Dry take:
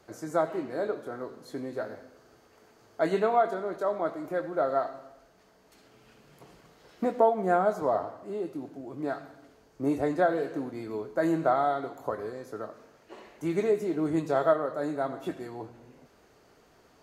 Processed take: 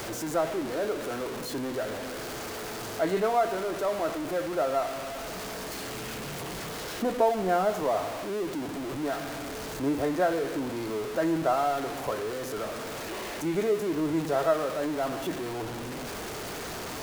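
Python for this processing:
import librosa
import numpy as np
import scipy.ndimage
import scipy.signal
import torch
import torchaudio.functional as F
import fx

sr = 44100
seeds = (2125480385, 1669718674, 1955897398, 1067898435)

y = x + 0.5 * 10.0 ** (-28.5 / 20.0) * np.sign(x)
y = F.gain(torch.from_numpy(y), -2.5).numpy()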